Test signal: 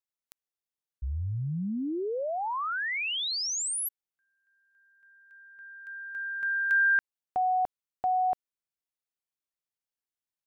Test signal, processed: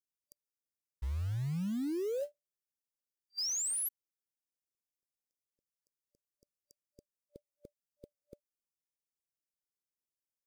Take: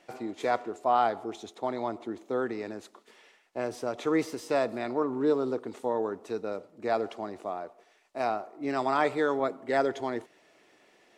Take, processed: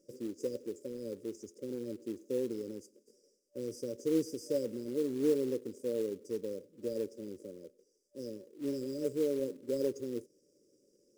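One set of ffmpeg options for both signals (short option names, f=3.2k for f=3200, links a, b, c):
-af "afftfilt=real='re*(1-between(b*sr/4096,590,4700))':imag='im*(1-between(b*sr/4096,590,4700))':win_size=4096:overlap=0.75,acrusher=bits=5:mode=log:mix=0:aa=0.000001,volume=-3.5dB"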